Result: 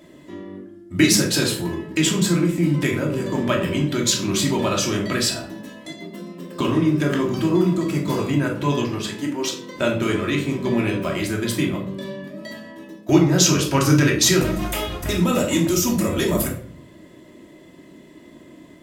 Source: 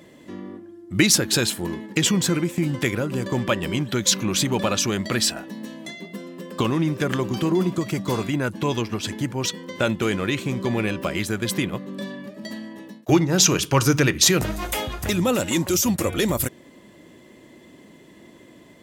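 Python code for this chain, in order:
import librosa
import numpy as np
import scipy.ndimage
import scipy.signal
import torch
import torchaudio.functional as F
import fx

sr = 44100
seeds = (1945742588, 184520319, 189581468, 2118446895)

y = fx.highpass(x, sr, hz=200.0, slope=24, at=(9.04, 9.76))
y = fx.room_shoebox(y, sr, seeds[0], volume_m3=680.0, walls='furnished', distance_m=2.8)
y = y * librosa.db_to_amplitude(-3.0)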